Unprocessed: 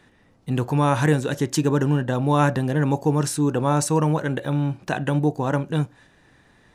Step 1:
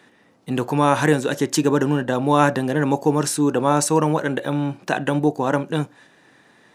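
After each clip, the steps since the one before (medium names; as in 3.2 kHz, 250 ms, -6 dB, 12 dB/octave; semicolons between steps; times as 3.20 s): high-pass 210 Hz 12 dB/octave; trim +4 dB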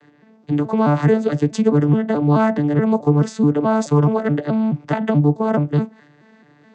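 vocoder on a broken chord bare fifth, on D3, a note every 214 ms; in parallel at +2 dB: compression, threshold -24 dBFS, peak gain reduction 11 dB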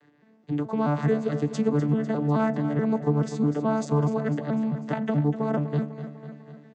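feedback delay 249 ms, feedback 59%, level -12 dB; trim -8.5 dB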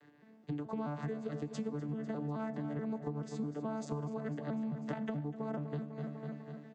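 compression 12:1, threshold -33 dBFS, peak gain reduction 15.5 dB; on a send at -17 dB: reverberation, pre-delay 3 ms; on the sum: trim -2 dB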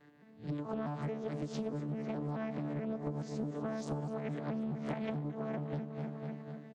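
reverse spectral sustain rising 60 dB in 0.33 s; delay 222 ms -22 dB; loudspeaker Doppler distortion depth 0.49 ms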